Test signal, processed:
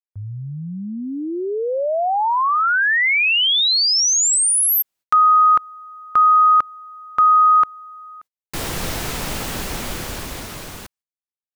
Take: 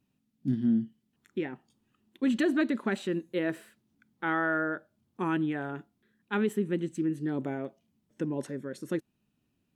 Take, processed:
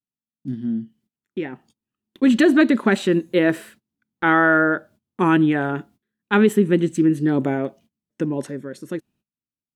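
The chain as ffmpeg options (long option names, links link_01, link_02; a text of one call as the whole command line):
ffmpeg -i in.wav -af "agate=range=-24dB:threshold=-59dB:ratio=16:detection=peak,dynaudnorm=framelen=210:gausssize=17:maxgain=13dB" out.wav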